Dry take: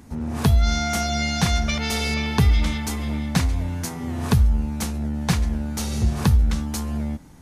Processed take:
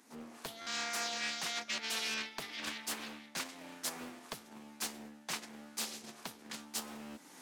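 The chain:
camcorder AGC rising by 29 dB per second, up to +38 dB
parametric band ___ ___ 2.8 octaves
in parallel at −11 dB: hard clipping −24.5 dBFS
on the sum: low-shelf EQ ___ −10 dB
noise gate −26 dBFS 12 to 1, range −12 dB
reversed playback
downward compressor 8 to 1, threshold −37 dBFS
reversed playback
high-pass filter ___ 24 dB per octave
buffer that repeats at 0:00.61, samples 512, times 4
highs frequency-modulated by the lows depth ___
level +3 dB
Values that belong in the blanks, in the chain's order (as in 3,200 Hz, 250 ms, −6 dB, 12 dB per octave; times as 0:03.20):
590 Hz, −5.5 dB, 340 Hz, 250 Hz, 0.62 ms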